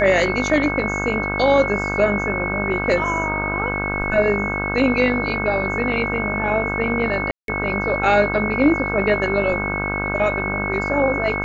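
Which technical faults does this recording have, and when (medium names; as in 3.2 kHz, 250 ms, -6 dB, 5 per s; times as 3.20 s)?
buzz 50 Hz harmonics 32 -26 dBFS
whine 2.2 kHz -24 dBFS
7.31–7.48 s: dropout 172 ms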